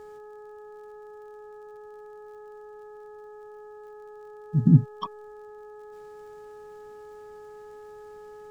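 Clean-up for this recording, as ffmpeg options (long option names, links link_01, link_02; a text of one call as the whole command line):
ffmpeg -i in.wav -af "adeclick=threshold=4,bandreject=frequency=421.9:width_type=h:width=4,bandreject=frequency=843.8:width_type=h:width=4,bandreject=frequency=1265.7:width_type=h:width=4,bandreject=frequency=1687.6:width_type=h:width=4" out.wav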